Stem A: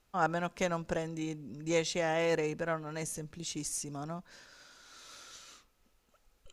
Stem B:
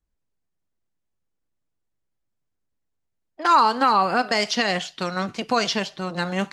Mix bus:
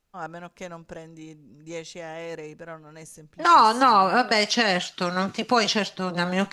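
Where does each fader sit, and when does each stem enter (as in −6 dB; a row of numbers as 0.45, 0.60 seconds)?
−5.5, +1.0 decibels; 0.00, 0.00 seconds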